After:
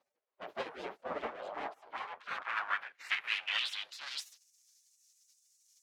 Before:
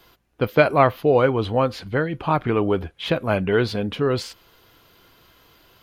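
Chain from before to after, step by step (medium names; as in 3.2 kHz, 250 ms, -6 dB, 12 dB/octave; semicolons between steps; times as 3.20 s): comb filter that takes the minimum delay 9.5 ms; spectral gate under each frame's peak -20 dB weak; band-pass sweep 510 Hz -> 6.2 kHz, 1.27–4.48 s; trim +6 dB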